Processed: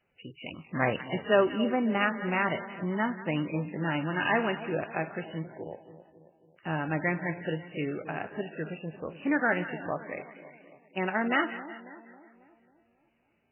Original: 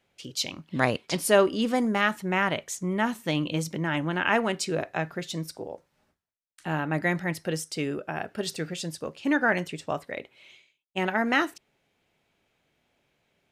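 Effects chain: two-band feedback delay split 890 Hz, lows 272 ms, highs 182 ms, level -13.5 dB; trim -2.5 dB; MP3 8 kbps 8 kHz

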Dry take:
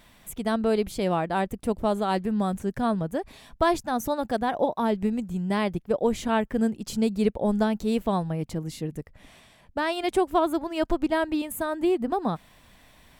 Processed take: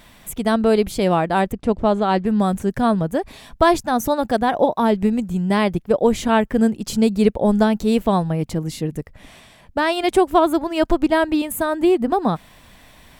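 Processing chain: 1.52–2.26 s: distance through air 100 m; trim +7.5 dB

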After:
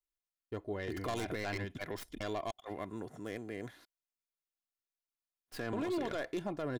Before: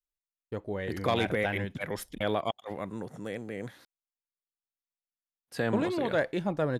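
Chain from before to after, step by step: tracing distortion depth 0.17 ms; comb 2.9 ms, depth 43%; peak limiter -23.5 dBFS, peak gain reduction 9 dB; trim -4.5 dB

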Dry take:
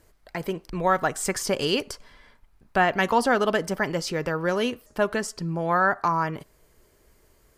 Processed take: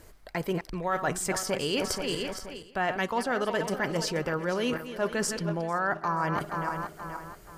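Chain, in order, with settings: backward echo that repeats 239 ms, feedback 57%, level -11.5 dB; reverse; compression 5:1, threshold -34 dBFS, peak gain reduction 16.5 dB; reverse; trim +7 dB

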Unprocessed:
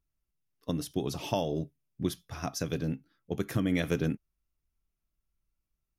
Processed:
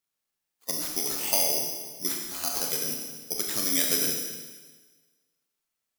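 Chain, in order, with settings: knee-point frequency compression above 3.6 kHz 1.5:1; frequency weighting A; careless resampling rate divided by 8×, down none, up zero stuff; Schroeder reverb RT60 1.4 s, combs from 26 ms, DRR 0.5 dB; trim -2 dB

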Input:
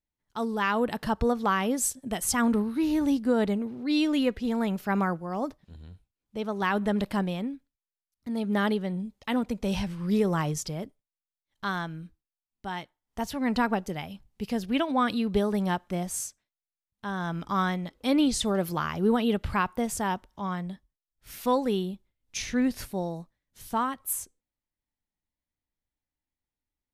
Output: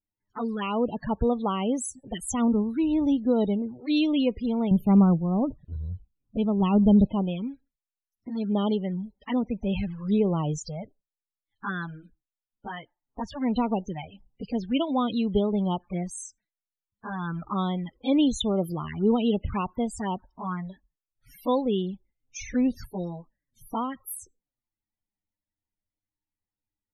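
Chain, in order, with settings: 4.71–7.07 s: tone controls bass +13 dB, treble +1 dB; touch-sensitive flanger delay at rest 9.8 ms, full sweep at -24 dBFS; loudest bins only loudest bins 32; trim +2 dB

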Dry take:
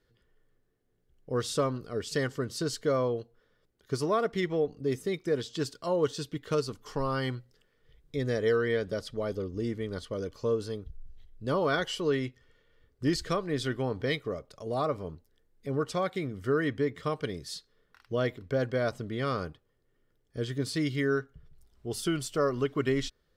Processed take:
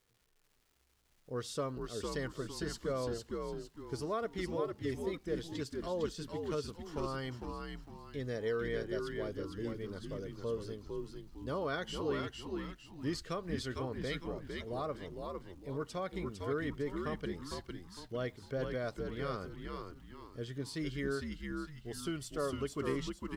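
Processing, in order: crackle 460 per s -52 dBFS; frequency-shifting echo 455 ms, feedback 37%, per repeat -82 Hz, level -4 dB; trim -9 dB

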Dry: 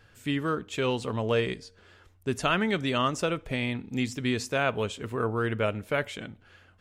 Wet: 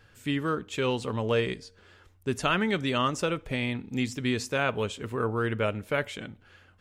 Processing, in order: band-stop 670 Hz, Q 16

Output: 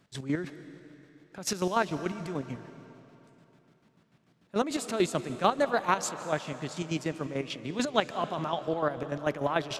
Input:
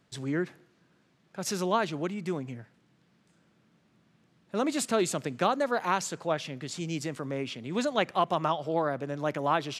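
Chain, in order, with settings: square tremolo 6.8 Hz, depth 65%, duty 40%; algorithmic reverb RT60 3.2 s, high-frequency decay 0.9×, pre-delay 115 ms, DRR 12.5 dB; trim +2.5 dB

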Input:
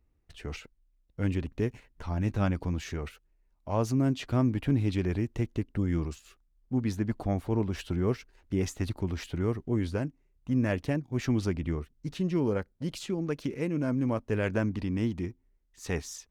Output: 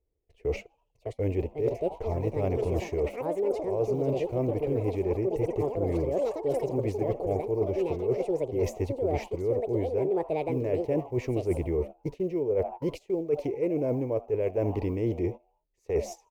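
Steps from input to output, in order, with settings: block-companded coder 7-bit; peaking EQ 8.7 kHz -4.5 dB 0.76 oct; ever faster or slower copies 755 ms, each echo +7 st, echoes 3, each echo -6 dB; FFT filter 120 Hz 0 dB, 220 Hz -10 dB, 440 Hz +14 dB, 1 kHz -3 dB, 1.5 kHz -18 dB, 2.2 kHz 0 dB, 3.5 kHz -12 dB, 6.5 kHz -6 dB; on a send: frequency-shifting echo 81 ms, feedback 53%, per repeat +130 Hz, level -21.5 dB; on the sum: gate -39 dBFS, range -16 dB; reverse; compression 12:1, threshold -30 dBFS, peak gain reduction 17.5 dB; reverse; trim +6 dB

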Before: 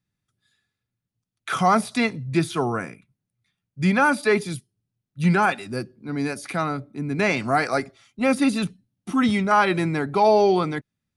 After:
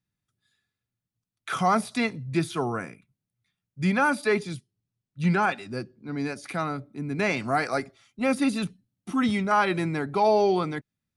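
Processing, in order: 4.37–6.44 s: low-pass 7.6 kHz 12 dB/octave; trim -4 dB

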